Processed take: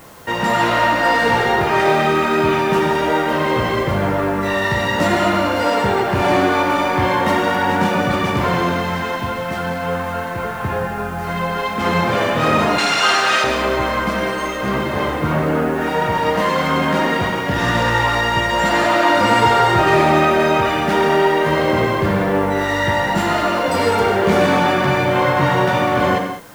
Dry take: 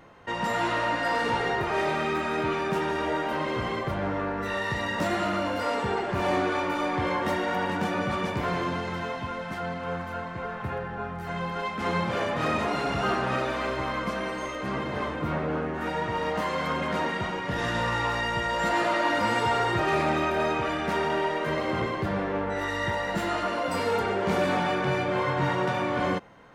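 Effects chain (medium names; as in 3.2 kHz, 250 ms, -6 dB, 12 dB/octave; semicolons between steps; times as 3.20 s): 12.78–13.44 s: frequency weighting ITU-R 468; in parallel at -6 dB: word length cut 8-bit, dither triangular; on the sum: gated-style reverb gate 230 ms flat, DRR 4.5 dB; trim +6 dB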